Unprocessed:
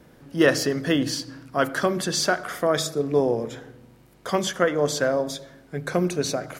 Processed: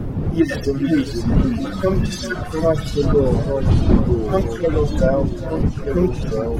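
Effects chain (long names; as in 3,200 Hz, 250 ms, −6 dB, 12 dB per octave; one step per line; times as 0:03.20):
harmonic-percussive split with one part muted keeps harmonic
wind on the microphone 180 Hz −25 dBFS
in parallel at −0.5 dB: brickwall limiter −15.5 dBFS, peak gain reduction 10 dB
on the sum: reverb reduction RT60 2 s
on a send: feedback echo with a high-pass in the loop 399 ms, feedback 70%, level −13 dB
on the sum: delay with pitch and tempo change per echo 354 ms, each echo −3 semitones, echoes 3, each echo −6 dB
level +1.5 dB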